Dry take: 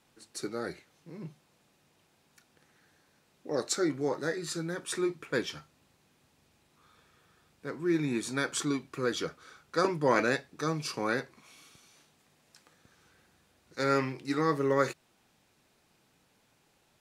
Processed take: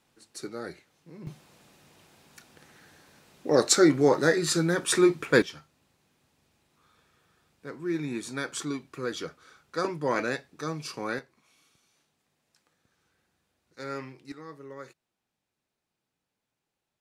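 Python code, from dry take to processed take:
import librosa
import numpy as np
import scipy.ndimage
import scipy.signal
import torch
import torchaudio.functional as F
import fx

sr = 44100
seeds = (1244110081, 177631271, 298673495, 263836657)

y = fx.gain(x, sr, db=fx.steps((0.0, -1.5), (1.27, 10.0), (5.42, -2.0), (11.19, -9.0), (14.32, -16.5)))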